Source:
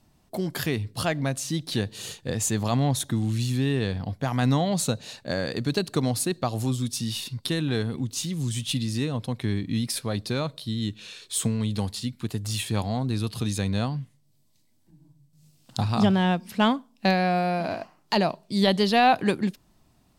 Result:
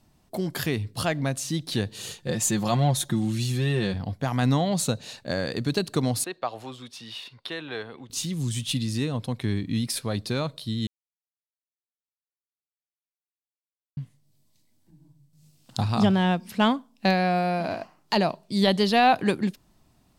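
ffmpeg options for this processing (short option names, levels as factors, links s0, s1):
-filter_complex "[0:a]asettb=1/sr,asplit=3[s0][s1][s2];[s0]atrim=end=2.204[s3];[s1]atrim=start=2.2:end=3.94,asetpts=PTS-STARTPTS,afade=t=in:d=0.004:c=qsin,afade=t=out:st=1.736:d=0.004:c=qsin,aecho=1:1:5.6:0.65,atrim=end_sample=76734[s4];[s2]atrim=start=3.936[s5];[s3][s4]acrossfade=d=0.004:c1=hsin:c2=qsin[s6];[s6][s5]acrossfade=d=0.004:c1=qsin:c2=hsin,asettb=1/sr,asplit=3[s7][s8][s9];[s7]atrim=end=6.244[s10];[s8]atrim=start=6.24:end=8.1,asetpts=PTS-STARTPTS,afade=t=in:d=0.004:c=qsin,afade=t=out:st=1.856:d=0.004:c=qsin,acrossover=split=430 3700:gain=0.1 1 0.112[s11][s12][s13];[s11][s12][s13]amix=inputs=3:normalize=0[s14];[s9]atrim=start=8.096[s15];[s10][s14]acrossfade=d=0.004:c1=hsin:c2=qsin[s16];[s16][s15]acrossfade=d=0.004:c1=qsin:c2=hsin,asplit=3[s17][s18][s19];[s17]atrim=end=10.87,asetpts=PTS-STARTPTS,afade=t=out:st=10.866:d=0.004:c=hsin[s20];[s18]atrim=start=10.87:end=13.97,asetpts=PTS-STARTPTS,volume=0[s21];[s19]atrim=start=13.97,asetpts=PTS-STARTPTS,afade=t=in:d=0.004:c=hsin[s22];[s20][s21][s22]concat=n=3:v=0:a=1"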